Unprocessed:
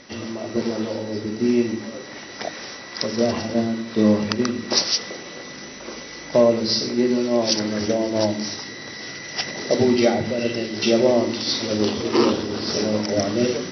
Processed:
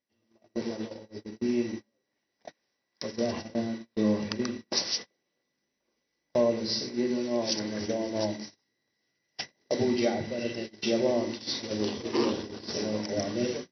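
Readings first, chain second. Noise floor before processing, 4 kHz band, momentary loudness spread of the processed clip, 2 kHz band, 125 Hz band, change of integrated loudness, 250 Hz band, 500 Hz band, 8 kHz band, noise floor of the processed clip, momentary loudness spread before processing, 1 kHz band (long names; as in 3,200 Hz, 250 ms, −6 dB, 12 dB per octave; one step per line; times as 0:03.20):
−37 dBFS, −9.5 dB, 13 LU, −11.0 dB, −9.5 dB, −9.0 dB, −9.5 dB, −9.0 dB, can't be measured, −81 dBFS, 15 LU, −10.0 dB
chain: notch filter 1,300 Hz, Q 7.2
noise gate −25 dBFS, range −35 dB
level −9 dB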